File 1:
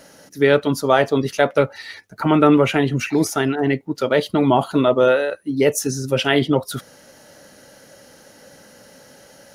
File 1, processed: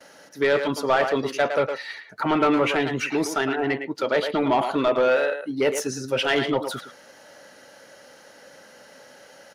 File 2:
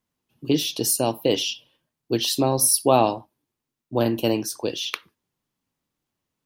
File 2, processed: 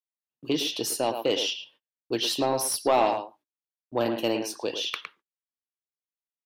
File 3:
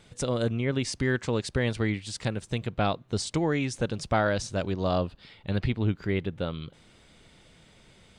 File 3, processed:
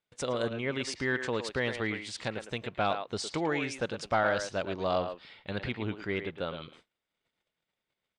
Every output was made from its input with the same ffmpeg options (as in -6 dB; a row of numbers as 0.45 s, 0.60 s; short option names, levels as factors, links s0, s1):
-filter_complex "[0:a]asplit=2[s0][s1];[s1]adelay=110,highpass=300,lowpass=3400,asoftclip=type=hard:threshold=0.282,volume=0.398[s2];[s0][s2]amix=inputs=2:normalize=0,asplit=2[s3][s4];[s4]highpass=f=720:p=1,volume=6.31,asoftclip=type=tanh:threshold=0.891[s5];[s3][s5]amix=inputs=2:normalize=0,lowpass=f=3200:p=1,volume=0.501,agate=range=0.0355:threshold=0.00501:ratio=16:detection=peak,volume=0.355"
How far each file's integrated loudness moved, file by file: -5.0 LU, -5.0 LU, -3.5 LU